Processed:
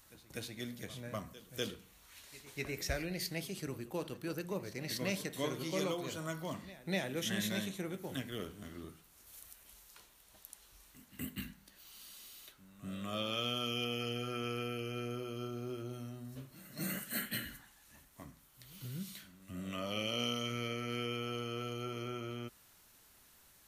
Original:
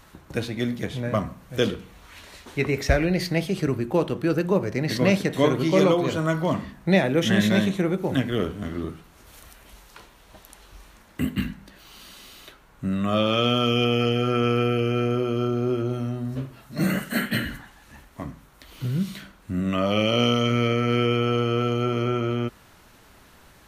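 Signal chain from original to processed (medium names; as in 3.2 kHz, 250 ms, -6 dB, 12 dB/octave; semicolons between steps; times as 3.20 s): pre-emphasis filter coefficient 0.8; on a send: reverse echo 247 ms -17.5 dB; on the sum: trim -4 dB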